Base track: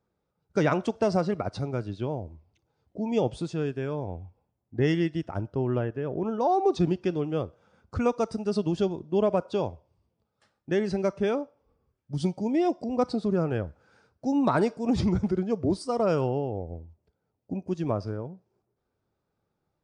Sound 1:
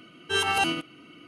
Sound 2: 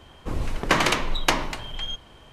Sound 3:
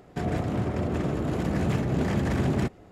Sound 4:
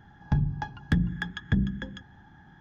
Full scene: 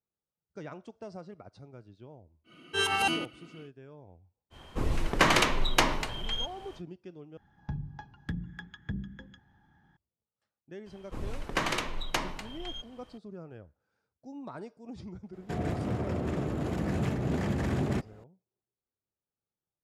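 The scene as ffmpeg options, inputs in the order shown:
ffmpeg -i bed.wav -i cue0.wav -i cue1.wav -i cue2.wav -i cue3.wav -filter_complex "[2:a]asplit=2[link_01][link_02];[0:a]volume=-19dB[link_03];[link_01]acontrast=48[link_04];[link_03]asplit=2[link_05][link_06];[link_05]atrim=end=7.374[link_07];[4:a]atrim=end=2.6,asetpts=PTS-STARTPTS,volume=-11.5dB[link_08];[link_06]atrim=start=9.966[link_09];[1:a]atrim=end=1.27,asetpts=PTS-STARTPTS,volume=-3dB,afade=type=in:duration=0.1,afade=type=out:start_time=1.17:duration=0.1,adelay=2440[link_10];[link_04]atrim=end=2.32,asetpts=PTS-STARTPTS,volume=-7.5dB,afade=type=in:duration=0.05,afade=type=out:start_time=2.27:duration=0.05,adelay=4500[link_11];[link_02]atrim=end=2.32,asetpts=PTS-STARTPTS,volume=-9.5dB,afade=type=in:duration=0.004:curve=hsin,afade=type=out:start_time=2.316:duration=0.004:curve=hsin,adelay=10860[link_12];[3:a]atrim=end=2.91,asetpts=PTS-STARTPTS,volume=-4.5dB,afade=type=in:duration=0.004:curve=hsin,afade=type=out:start_time=2.906:duration=0.004:curve=hsin,adelay=15330[link_13];[link_07][link_08]acrossfade=duration=0.004:curve1=hsin:curve2=hsin[link_14];[link_14][link_09]acrossfade=duration=0.004:curve1=hsin:curve2=hsin[link_15];[link_15][link_10][link_11][link_12][link_13]amix=inputs=5:normalize=0" out.wav

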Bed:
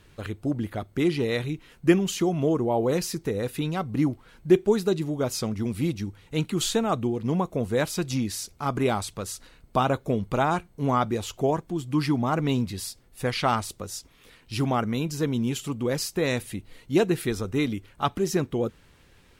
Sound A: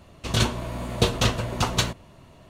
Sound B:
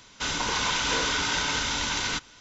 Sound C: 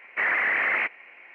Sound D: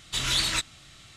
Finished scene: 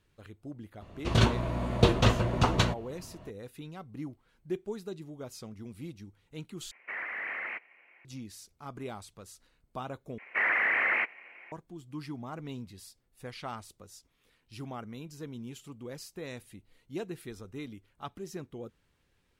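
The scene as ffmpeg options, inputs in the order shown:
ffmpeg -i bed.wav -i cue0.wav -i cue1.wav -i cue2.wav -filter_complex "[3:a]asplit=2[link_01][link_02];[0:a]volume=-16dB[link_03];[1:a]lowpass=frequency=2100:poles=1[link_04];[link_01]alimiter=limit=-17.5dB:level=0:latency=1:release=330[link_05];[link_03]asplit=3[link_06][link_07][link_08];[link_06]atrim=end=6.714[link_09];[link_05]atrim=end=1.34,asetpts=PTS-STARTPTS,volume=-11.5dB[link_10];[link_07]atrim=start=8.046:end=10.184[link_11];[link_02]atrim=end=1.34,asetpts=PTS-STARTPTS,volume=-3dB[link_12];[link_08]atrim=start=11.516[link_13];[link_04]atrim=end=2.49,asetpts=PTS-STARTPTS,afade=type=in:duration=0.004:curve=hsin,afade=type=out:start_time=2.486:duration=0.004:curve=hsin,adelay=810[link_14];[link_09][link_10]acrossfade=duration=0.004:curve1=hsin:curve2=hsin[link_15];[link_15][link_11]acrossfade=duration=0.004:curve1=hsin:curve2=hsin[link_16];[link_16][link_12]acrossfade=duration=0.004:curve1=hsin:curve2=hsin[link_17];[link_17][link_13]acrossfade=duration=0.004:curve1=hsin:curve2=hsin[link_18];[link_18][link_14]amix=inputs=2:normalize=0" out.wav

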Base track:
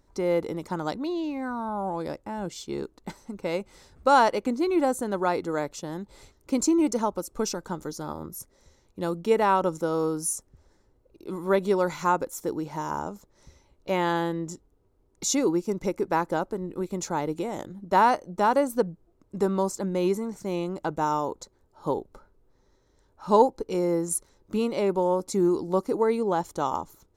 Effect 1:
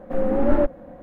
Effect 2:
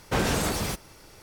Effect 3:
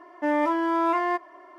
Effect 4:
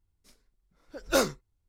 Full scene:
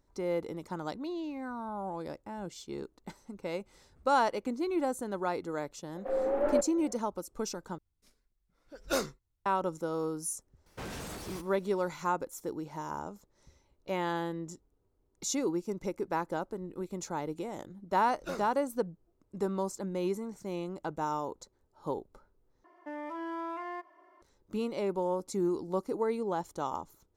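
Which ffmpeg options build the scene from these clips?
ffmpeg -i bed.wav -i cue0.wav -i cue1.wav -i cue2.wav -i cue3.wav -filter_complex "[4:a]asplit=2[link_01][link_02];[0:a]volume=-7.5dB[link_03];[1:a]lowshelf=frequency=290:width_type=q:width=1.5:gain=-14[link_04];[2:a]volume=22dB,asoftclip=hard,volume=-22dB[link_05];[link_02]acrossover=split=3000[link_06][link_07];[link_07]acompressor=threshold=-36dB:ratio=4:attack=1:release=60[link_08];[link_06][link_08]amix=inputs=2:normalize=0[link_09];[3:a]alimiter=limit=-19.5dB:level=0:latency=1:release=75[link_10];[link_03]asplit=3[link_11][link_12][link_13];[link_11]atrim=end=7.784[link_14];[link_01]atrim=end=1.68,asetpts=PTS-STARTPTS,volume=-6.5dB[link_15];[link_12]atrim=start=9.456:end=22.644[link_16];[link_10]atrim=end=1.58,asetpts=PTS-STARTPTS,volume=-12.5dB[link_17];[link_13]atrim=start=24.216[link_18];[link_04]atrim=end=1.02,asetpts=PTS-STARTPTS,volume=-8.5dB,afade=type=in:duration=0.004:curve=hsin,afade=type=out:start_time=1.016:duration=0.004:curve=hsin,adelay=5950[link_19];[link_05]atrim=end=1.22,asetpts=PTS-STARTPTS,volume=-14.5dB,afade=type=in:duration=0.004:curve=hsin,afade=type=out:start_time=1.216:duration=0.004:curve=hsin,adelay=470106S[link_20];[link_09]atrim=end=1.68,asetpts=PTS-STARTPTS,volume=-14dB,afade=type=in:duration=0.004:curve=hsin,afade=type=out:start_time=1.676:duration=0.004:curve=hsin,adelay=17140[link_21];[link_14][link_15]acrossfade=duration=0.004:curve1=hsin:curve2=hsin[link_22];[link_22][link_16]acrossfade=duration=0.004:curve1=hsin:curve2=hsin[link_23];[link_23][link_17]acrossfade=duration=0.004:curve1=hsin:curve2=hsin[link_24];[link_24][link_18]acrossfade=duration=0.004:curve1=hsin:curve2=hsin[link_25];[link_25][link_19][link_20][link_21]amix=inputs=4:normalize=0" out.wav

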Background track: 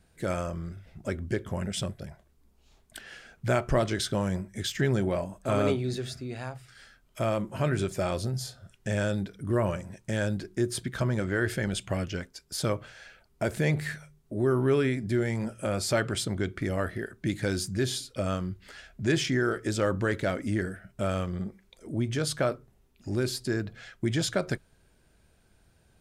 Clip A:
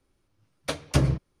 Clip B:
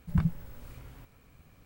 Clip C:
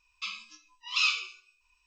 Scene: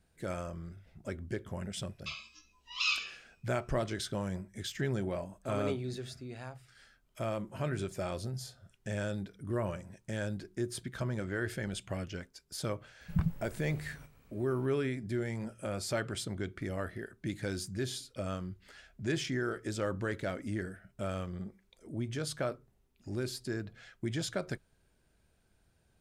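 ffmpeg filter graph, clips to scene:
ffmpeg -i bed.wav -i cue0.wav -i cue1.wav -i cue2.wav -filter_complex "[0:a]volume=-7.5dB[link_01];[3:a]atrim=end=1.86,asetpts=PTS-STARTPTS,volume=-5dB,afade=type=in:duration=0.004:curve=hsin,afade=type=out:start_time=1.856:duration=0.004:curve=hsin,adelay=1840[link_02];[2:a]atrim=end=1.65,asetpts=PTS-STARTPTS,volume=-4dB,afade=type=in:duration=0.004:curve=hsin,afade=type=out:start_time=1.646:duration=0.004:curve=hsin,adelay=13010[link_03];[link_01][link_02][link_03]amix=inputs=3:normalize=0" out.wav

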